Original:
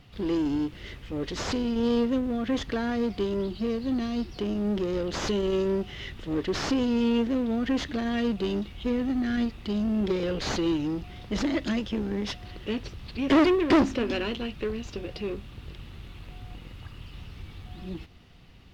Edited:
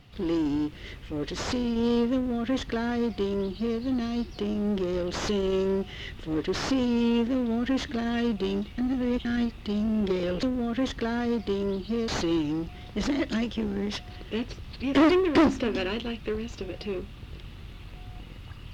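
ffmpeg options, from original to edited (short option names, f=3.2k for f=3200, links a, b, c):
-filter_complex "[0:a]asplit=5[a][b][c][d][e];[a]atrim=end=8.782[f];[b]atrim=start=8.778:end=9.252,asetpts=PTS-STARTPTS,areverse[g];[c]atrim=start=9.248:end=10.432[h];[d]atrim=start=2.138:end=3.792[i];[e]atrim=start=10.428[j];[f][g]acrossfade=d=0.004:c1=hsin:c2=hsin[k];[k][h]acrossfade=d=0.004:c1=hsin:c2=hsin[l];[l][i]acrossfade=d=0.004:c1=hsin:c2=hsin[m];[m][j]acrossfade=d=0.004:c1=hsin:c2=hsin"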